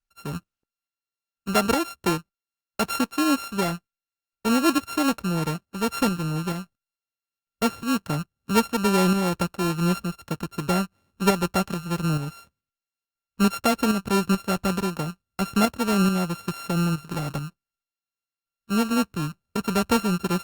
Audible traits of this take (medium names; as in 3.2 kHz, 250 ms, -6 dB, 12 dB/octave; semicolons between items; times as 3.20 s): a buzz of ramps at a fixed pitch in blocks of 32 samples; tremolo saw up 2.3 Hz, depth 50%; Opus